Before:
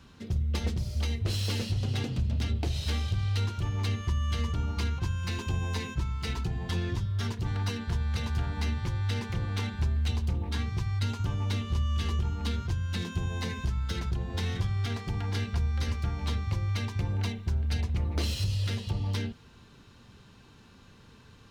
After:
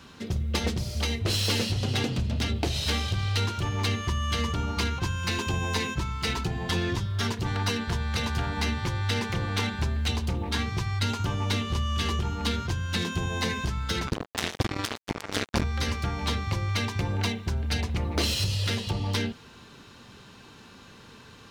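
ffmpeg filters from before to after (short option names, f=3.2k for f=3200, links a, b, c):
-filter_complex "[0:a]asettb=1/sr,asplit=3[a][b][c];[a]atrim=end=14.074[d];[b]atrim=start=14.07:end=15.64,asetpts=PTS-STARTPTS,afade=t=in:d=0.004:c=qsin,afade=t=out:st=1.566:d=0.004:c=qsin,acrusher=bits=3:mix=0:aa=0.5[e];[c]atrim=start=15.636[f];[d][e]acrossfade=d=0.004:c1=hsin:c2=qsin[g];[g][f]acrossfade=d=0.004:c1=qsin:c2=hsin,lowshelf=f=140:g=-12,volume=8.5dB"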